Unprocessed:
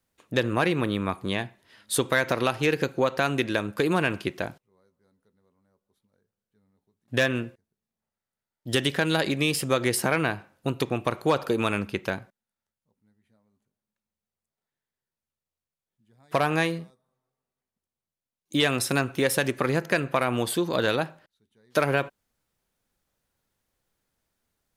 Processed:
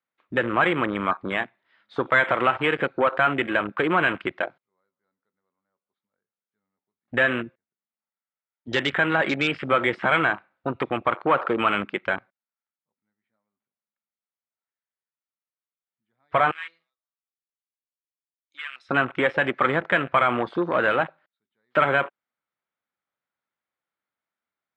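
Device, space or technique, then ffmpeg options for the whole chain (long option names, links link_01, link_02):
overdrive pedal into a guitar cabinet: -filter_complex "[0:a]asplit=2[link_01][link_02];[link_02]highpass=frequency=720:poles=1,volume=15dB,asoftclip=type=tanh:threshold=-10dB[link_03];[link_01][link_03]amix=inputs=2:normalize=0,lowpass=frequency=7600:poles=1,volume=-6dB,highpass=110,equalizer=frequency=440:width_type=q:width=4:gain=-4,equalizer=frequency=1300:width_type=q:width=4:gain=5,equalizer=frequency=2200:width_type=q:width=4:gain=6,lowpass=frequency=3500:width=0.5412,lowpass=frequency=3500:width=1.3066,asettb=1/sr,asplit=3[link_04][link_05][link_06];[link_04]atrim=end=16.514[link_07];[link_05]atrim=start=16.51:end=18.89,asetpts=PTS-STARTPTS,afade=type=in:duration=0.004:curve=qsin,afade=type=out:start_time=2.376:duration=0.004:curve=qsin,aderivative[link_08];[link_06]atrim=start=18.886[link_09];[link_07][link_08]acrossfade=duration=0.004:curve1=hsin:curve2=qsin[link_10];[link_10][link_09]acrossfade=duration=0.004:curve1=qsin:curve2=hsin,afwtdn=0.0501,equalizer=frequency=2600:width_type=o:width=0.7:gain=-5.5"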